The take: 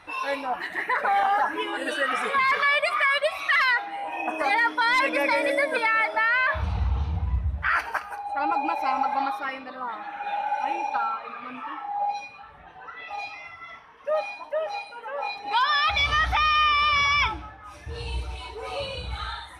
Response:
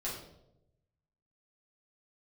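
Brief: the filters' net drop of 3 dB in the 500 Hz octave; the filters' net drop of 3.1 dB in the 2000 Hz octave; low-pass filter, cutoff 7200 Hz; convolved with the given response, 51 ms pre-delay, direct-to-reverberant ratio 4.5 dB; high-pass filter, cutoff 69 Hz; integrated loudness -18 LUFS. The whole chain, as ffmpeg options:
-filter_complex "[0:a]highpass=69,lowpass=7.2k,equalizer=f=500:t=o:g=-3.5,equalizer=f=2k:t=o:g=-3.5,asplit=2[a][b];[1:a]atrim=start_sample=2205,adelay=51[c];[b][c]afir=irnorm=-1:irlink=0,volume=-7dB[d];[a][d]amix=inputs=2:normalize=0,volume=7.5dB"

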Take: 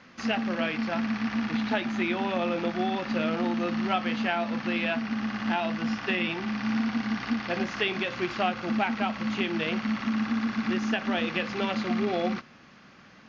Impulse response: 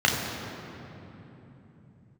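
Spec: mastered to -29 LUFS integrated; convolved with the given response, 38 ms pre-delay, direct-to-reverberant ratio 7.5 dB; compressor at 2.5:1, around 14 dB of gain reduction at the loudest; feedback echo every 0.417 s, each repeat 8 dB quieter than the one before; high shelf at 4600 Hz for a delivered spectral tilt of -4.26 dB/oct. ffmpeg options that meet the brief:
-filter_complex "[0:a]highshelf=f=4.6k:g=-7.5,acompressor=threshold=-46dB:ratio=2.5,aecho=1:1:417|834|1251|1668|2085:0.398|0.159|0.0637|0.0255|0.0102,asplit=2[a][b];[1:a]atrim=start_sample=2205,adelay=38[c];[b][c]afir=irnorm=-1:irlink=0,volume=-25dB[d];[a][d]amix=inputs=2:normalize=0,volume=11dB"

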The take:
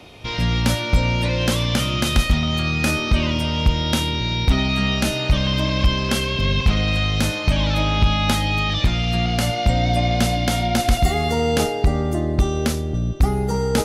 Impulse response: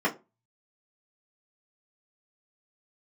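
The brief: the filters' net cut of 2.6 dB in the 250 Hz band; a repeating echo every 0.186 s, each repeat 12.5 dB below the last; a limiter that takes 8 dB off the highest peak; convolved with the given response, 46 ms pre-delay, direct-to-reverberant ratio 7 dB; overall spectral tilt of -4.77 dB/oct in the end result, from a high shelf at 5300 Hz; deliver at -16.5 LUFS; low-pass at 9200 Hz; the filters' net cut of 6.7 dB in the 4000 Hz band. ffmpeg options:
-filter_complex "[0:a]lowpass=9.2k,equalizer=f=250:t=o:g=-3.5,equalizer=f=4k:t=o:g=-7,highshelf=f=5.3k:g=-5,alimiter=limit=-15dB:level=0:latency=1,aecho=1:1:186|372|558:0.237|0.0569|0.0137,asplit=2[a][b];[1:a]atrim=start_sample=2205,adelay=46[c];[b][c]afir=irnorm=-1:irlink=0,volume=-19.5dB[d];[a][d]amix=inputs=2:normalize=0,volume=8dB"

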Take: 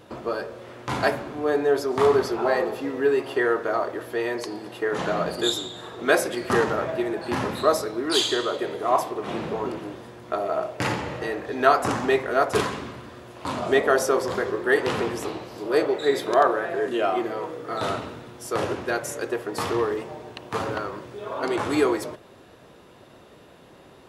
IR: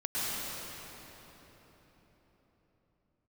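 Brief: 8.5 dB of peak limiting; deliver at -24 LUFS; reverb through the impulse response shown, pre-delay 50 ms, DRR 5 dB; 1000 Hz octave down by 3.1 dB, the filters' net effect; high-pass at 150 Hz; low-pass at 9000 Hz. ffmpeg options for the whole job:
-filter_complex "[0:a]highpass=150,lowpass=9k,equalizer=f=1k:t=o:g=-4.5,alimiter=limit=-14dB:level=0:latency=1,asplit=2[a][b];[1:a]atrim=start_sample=2205,adelay=50[c];[b][c]afir=irnorm=-1:irlink=0,volume=-13.5dB[d];[a][d]amix=inputs=2:normalize=0,volume=2.5dB"

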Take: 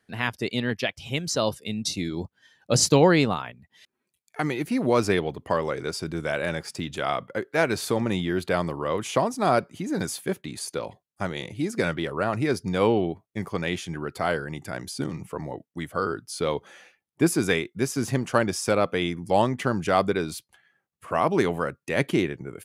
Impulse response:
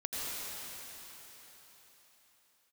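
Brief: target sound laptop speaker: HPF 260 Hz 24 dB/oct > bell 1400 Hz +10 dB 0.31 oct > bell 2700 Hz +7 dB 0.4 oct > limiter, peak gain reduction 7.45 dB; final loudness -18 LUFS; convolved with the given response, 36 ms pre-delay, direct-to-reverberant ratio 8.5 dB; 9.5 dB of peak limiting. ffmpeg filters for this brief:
-filter_complex "[0:a]alimiter=limit=-15dB:level=0:latency=1,asplit=2[a][b];[1:a]atrim=start_sample=2205,adelay=36[c];[b][c]afir=irnorm=-1:irlink=0,volume=-13.5dB[d];[a][d]amix=inputs=2:normalize=0,highpass=f=260:w=0.5412,highpass=f=260:w=1.3066,equalizer=f=1.4k:t=o:w=0.31:g=10,equalizer=f=2.7k:t=o:w=0.4:g=7,volume=11.5dB,alimiter=limit=-6dB:level=0:latency=1"

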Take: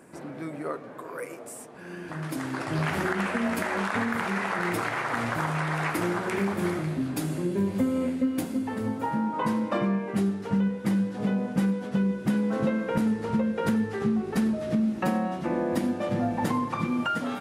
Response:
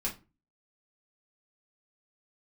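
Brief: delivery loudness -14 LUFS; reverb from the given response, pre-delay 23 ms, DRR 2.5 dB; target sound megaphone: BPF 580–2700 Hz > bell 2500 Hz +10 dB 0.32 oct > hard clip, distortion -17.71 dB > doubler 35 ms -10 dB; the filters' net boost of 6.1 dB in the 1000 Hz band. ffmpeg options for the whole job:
-filter_complex "[0:a]equalizer=f=1k:t=o:g=8,asplit=2[a][b];[1:a]atrim=start_sample=2205,adelay=23[c];[b][c]afir=irnorm=-1:irlink=0,volume=-6dB[d];[a][d]amix=inputs=2:normalize=0,highpass=580,lowpass=2.7k,equalizer=f=2.5k:t=o:w=0.32:g=10,asoftclip=type=hard:threshold=-18.5dB,asplit=2[e][f];[f]adelay=35,volume=-10dB[g];[e][g]amix=inputs=2:normalize=0,volume=13dB"

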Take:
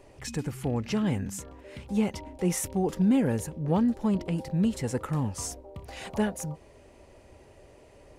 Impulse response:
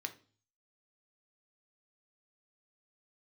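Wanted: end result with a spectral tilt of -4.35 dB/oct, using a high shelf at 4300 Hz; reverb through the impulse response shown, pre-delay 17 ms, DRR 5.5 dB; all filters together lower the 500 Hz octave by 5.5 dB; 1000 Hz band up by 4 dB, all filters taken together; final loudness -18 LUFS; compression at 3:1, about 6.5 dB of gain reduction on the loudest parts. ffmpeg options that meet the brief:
-filter_complex "[0:a]equalizer=f=500:t=o:g=-9,equalizer=f=1k:t=o:g=8,highshelf=f=4.3k:g=8,acompressor=threshold=-30dB:ratio=3,asplit=2[a][b];[1:a]atrim=start_sample=2205,adelay=17[c];[b][c]afir=irnorm=-1:irlink=0,volume=-5dB[d];[a][d]amix=inputs=2:normalize=0,volume=15.5dB"

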